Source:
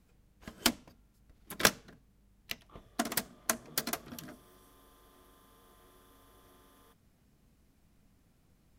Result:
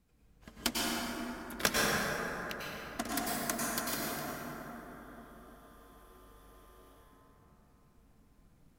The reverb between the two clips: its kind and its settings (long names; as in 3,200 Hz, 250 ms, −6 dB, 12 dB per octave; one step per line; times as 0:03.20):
dense smooth reverb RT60 4.3 s, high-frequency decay 0.35×, pre-delay 85 ms, DRR −6.5 dB
level −5.5 dB